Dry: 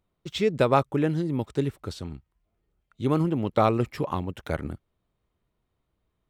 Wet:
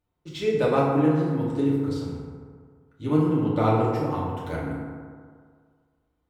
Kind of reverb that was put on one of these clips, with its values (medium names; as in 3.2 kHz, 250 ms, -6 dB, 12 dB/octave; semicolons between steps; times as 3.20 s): FDN reverb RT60 1.9 s, low-frequency decay 0.9×, high-frequency decay 0.4×, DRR -7 dB; trim -8 dB